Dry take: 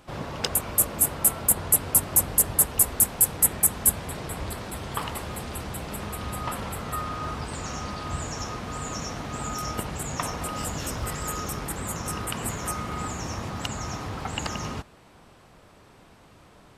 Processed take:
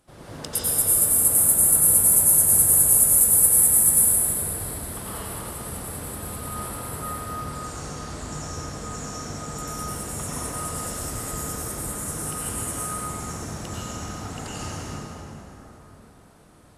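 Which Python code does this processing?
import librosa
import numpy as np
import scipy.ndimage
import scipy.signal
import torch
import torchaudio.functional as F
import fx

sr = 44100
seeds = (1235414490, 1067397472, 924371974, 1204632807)

y = fx.graphic_eq_15(x, sr, hz=(1000, 2500, 10000), db=(-4, -4, 12))
y = fx.rev_plate(y, sr, seeds[0], rt60_s=3.9, hf_ratio=0.55, predelay_ms=80, drr_db=-9.5)
y = y * 10.0 ** (-11.0 / 20.0)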